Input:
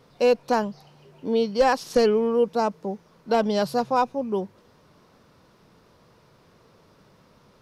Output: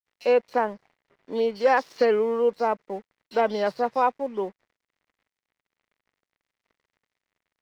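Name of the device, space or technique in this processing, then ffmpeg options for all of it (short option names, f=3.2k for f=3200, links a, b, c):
pocket radio on a weak battery: -filter_complex "[0:a]asettb=1/sr,asplit=3[a][b][c];[a]atrim=end=0.534[d];[b]atrim=start=0.53:end=1.28,asetpts=PTS-STARTPTS,afade=t=in:d=0.004:c=qsin,afade=t=out:st=0.746:d=0.004:c=qsin,equalizer=f=4.8k:t=o:w=2:g=-7.5[e];[c]atrim=start=1.276[f];[d][e]acrossfade=d=0.004:c1=hsin:c2=qsin[g];[g][f]acrossfade=d=0.004:c1=qsin:c2=hsin,highpass=320,lowpass=3.8k,acrossover=split=3300[h][i];[h]adelay=50[j];[j][i]amix=inputs=2:normalize=0,aeval=exprs='sgn(val(0))*max(abs(val(0))-0.00224,0)':c=same,equalizer=f=2k:t=o:w=0.4:g=7"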